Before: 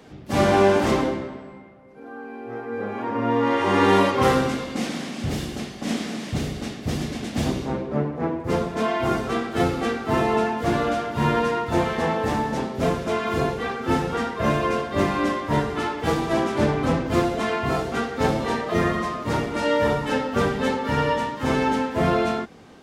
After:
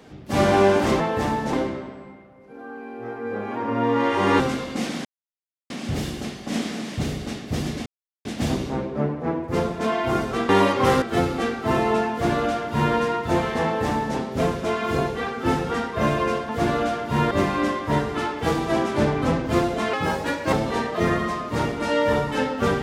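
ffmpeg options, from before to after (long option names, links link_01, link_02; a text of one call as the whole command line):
ffmpeg -i in.wav -filter_complex "[0:a]asplit=12[link_01][link_02][link_03][link_04][link_05][link_06][link_07][link_08][link_09][link_10][link_11][link_12];[link_01]atrim=end=1.002[link_13];[link_02]atrim=start=12.068:end=12.602[link_14];[link_03]atrim=start=0.998:end=3.872[link_15];[link_04]atrim=start=4.398:end=5.05,asetpts=PTS-STARTPTS,afade=type=out:start_time=0.648:duration=0.004:curve=hsin,apad=pad_dur=0.65[link_16];[link_05]atrim=start=5.05:end=7.21,asetpts=PTS-STARTPTS,afade=type=in:duration=0.004:curve=hsin,afade=type=out:start_time=2.156:duration=0.004:curve=hsin,apad=pad_dur=0.39[link_17];[link_06]atrim=start=7.21:end=9.452,asetpts=PTS-STARTPTS,afade=type=in:duration=0.004:curve=hsin[link_18];[link_07]atrim=start=3.868:end=4.402[link_19];[link_08]atrim=start=9.448:end=14.922[link_20];[link_09]atrim=start=10.548:end=11.372[link_21];[link_10]atrim=start=14.918:end=17.544[link_22];[link_11]atrim=start=17.54:end=18.27,asetpts=PTS-STARTPTS,asetrate=53802,aresample=44100[link_23];[link_12]atrim=start=18.266[link_24];[link_13][link_14]acrossfade=duration=0.004:curve1=hsin:curve2=hsin[link_25];[link_25][link_15]acrossfade=duration=0.004:curve1=hsin:curve2=hsin[link_26];[link_16][link_17][link_18]concat=n=3:v=0:a=1[link_27];[link_26][link_27]acrossfade=duration=0.004:curve1=hsin:curve2=hsin[link_28];[link_28][link_19]acrossfade=duration=0.004:curve1=hsin:curve2=hsin[link_29];[link_29][link_20]acrossfade=duration=0.004:curve1=hsin:curve2=hsin[link_30];[link_30][link_21]acrossfade=duration=0.004:curve1=hsin:curve2=hsin[link_31];[link_31][link_22]acrossfade=duration=0.004:curve1=hsin:curve2=hsin[link_32];[link_32][link_23]acrossfade=duration=0.004:curve1=hsin:curve2=hsin[link_33];[link_33][link_24]acrossfade=duration=0.004:curve1=hsin:curve2=hsin" out.wav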